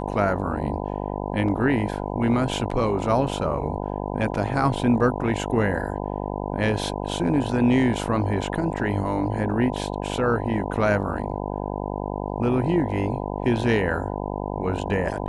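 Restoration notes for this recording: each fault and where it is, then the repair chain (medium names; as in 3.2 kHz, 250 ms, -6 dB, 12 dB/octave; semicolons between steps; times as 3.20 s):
buzz 50 Hz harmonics 20 -29 dBFS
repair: de-hum 50 Hz, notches 20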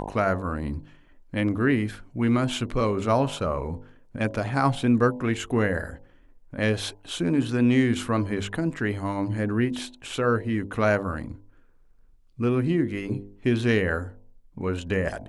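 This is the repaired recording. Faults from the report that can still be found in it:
nothing left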